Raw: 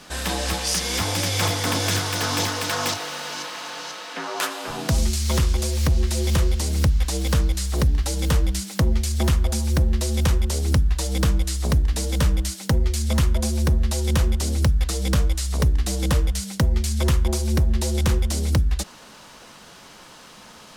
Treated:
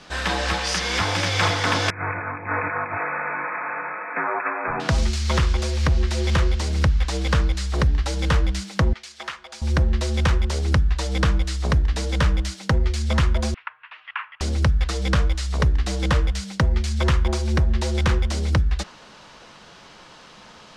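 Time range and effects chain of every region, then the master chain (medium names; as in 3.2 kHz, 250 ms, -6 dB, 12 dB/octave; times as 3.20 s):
1.90–4.80 s: compressor with a negative ratio -27 dBFS, ratio -0.5 + brick-wall FIR low-pass 2.6 kHz
8.93–9.62 s: high-pass 1.3 kHz + tilt EQ -2.5 dB/octave
13.54–14.41 s: elliptic band-pass 1.2–2.9 kHz, stop band 60 dB + frequency shift -180 Hz
whole clip: dynamic bell 1.5 kHz, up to +7 dB, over -41 dBFS, Q 0.8; low-pass 5.3 kHz 12 dB/octave; peaking EQ 250 Hz -3.5 dB 0.37 oct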